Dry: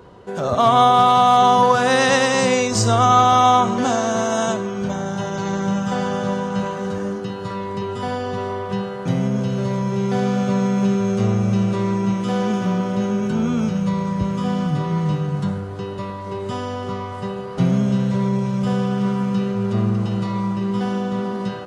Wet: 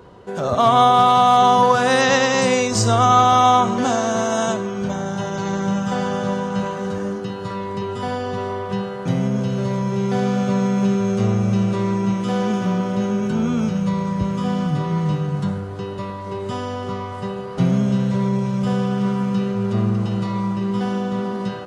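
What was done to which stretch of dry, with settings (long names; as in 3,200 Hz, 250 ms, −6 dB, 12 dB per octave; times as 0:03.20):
0:02.01–0:02.42: linear-phase brick-wall low-pass 7,900 Hz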